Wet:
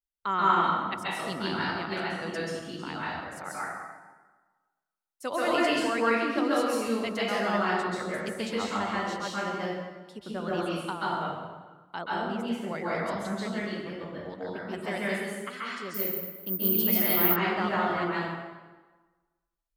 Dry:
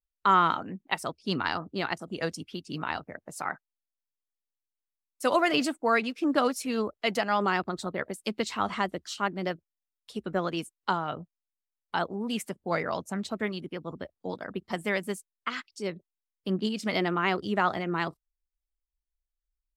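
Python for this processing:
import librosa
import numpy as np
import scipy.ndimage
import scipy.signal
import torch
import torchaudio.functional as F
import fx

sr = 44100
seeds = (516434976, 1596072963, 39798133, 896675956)

y = fx.peak_eq(x, sr, hz=12000.0, db=-13.0, octaves=2.1, at=(12.01, 12.75))
y = fx.rev_plate(y, sr, seeds[0], rt60_s=1.3, hf_ratio=0.75, predelay_ms=120, drr_db=-7.5)
y = fx.resample_bad(y, sr, factor=3, down='none', up='zero_stuff', at=(15.94, 17.36))
y = y * 10.0 ** (-8.0 / 20.0)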